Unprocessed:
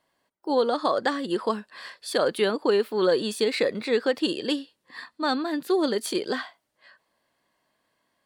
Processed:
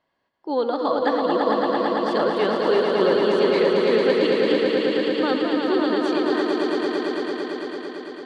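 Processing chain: air absorption 160 m; swelling echo 0.112 s, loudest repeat 5, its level -4.5 dB

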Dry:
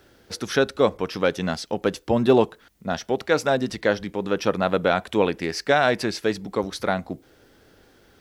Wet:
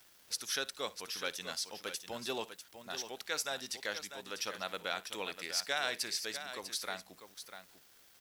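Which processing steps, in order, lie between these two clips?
pre-emphasis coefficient 0.97; tapped delay 58/647 ms -20/-10 dB; crackle 480/s -51 dBFS

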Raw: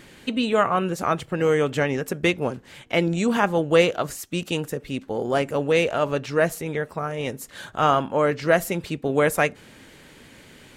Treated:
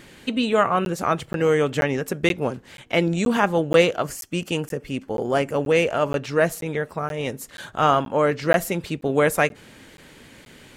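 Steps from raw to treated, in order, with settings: 3.93–6.21 notch 3800 Hz, Q 5.8; crackling interface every 0.48 s, samples 512, zero, from 0.85; gain +1 dB

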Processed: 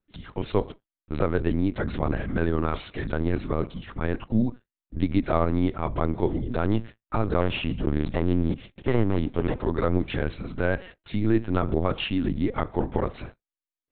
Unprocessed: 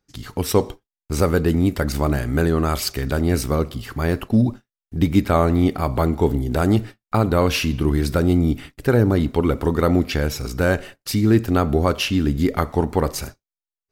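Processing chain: 7.41–9.61 minimum comb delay 0.35 ms; LPC vocoder at 8 kHz pitch kept; gain -6 dB

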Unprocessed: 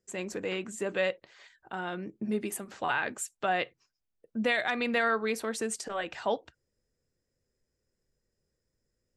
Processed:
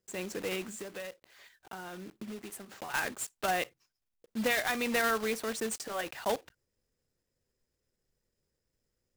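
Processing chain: block floating point 3-bit; 0.75–2.94 compressor 4:1, threshold -39 dBFS, peak gain reduction 12.5 dB; gain -2 dB

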